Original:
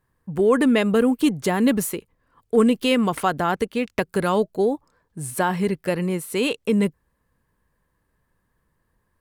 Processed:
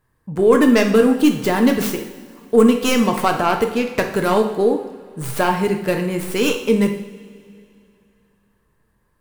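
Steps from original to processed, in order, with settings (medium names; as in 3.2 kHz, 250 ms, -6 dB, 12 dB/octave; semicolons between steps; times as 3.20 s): tracing distortion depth 0.18 ms; two-slope reverb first 0.71 s, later 2.8 s, from -17 dB, DRR 3.5 dB; trim +3 dB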